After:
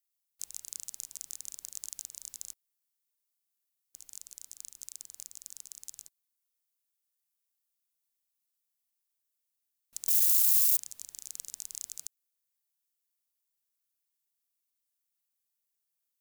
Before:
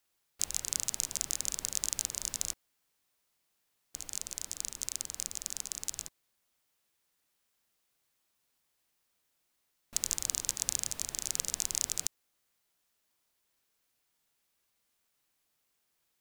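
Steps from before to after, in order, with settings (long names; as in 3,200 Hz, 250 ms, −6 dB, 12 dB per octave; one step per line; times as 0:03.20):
0:10.08–0:10.77: spike at every zero crossing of −13 dBFS
first-order pre-emphasis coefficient 0.8
level −7.5 dB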